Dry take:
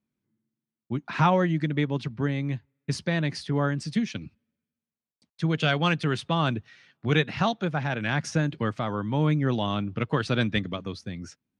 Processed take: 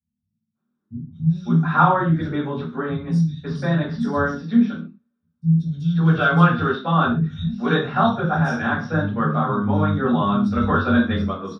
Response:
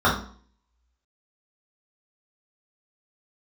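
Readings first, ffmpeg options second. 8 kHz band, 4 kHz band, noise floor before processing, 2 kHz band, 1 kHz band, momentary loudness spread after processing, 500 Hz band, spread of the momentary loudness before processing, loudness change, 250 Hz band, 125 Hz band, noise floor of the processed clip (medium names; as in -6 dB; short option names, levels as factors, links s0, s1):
no reading, -1.5 dB, under -85 dBFS, +6.0 dB, +9.0 dB, 10 LU, +4.5 dB, 11 LU, +7.0 dB, +8.5 dB, +6.5 dB, -78 dBFS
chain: -filter_complex "[0:a]acrossover=split=180|4600[s0][s1][s2];[s2]adelay=200[s3];[s1]adelay=550[s4];[s0][s4][s3]amix=inputs=3:normalize=0[s5];[1:a]atrim=start_sample=2205,afade=t=out:st=0.21:d=0.01,atrim=end_sample=9702[s6];[s5][s6]afir=irnorm=-1:irlink=0,volume=0.2"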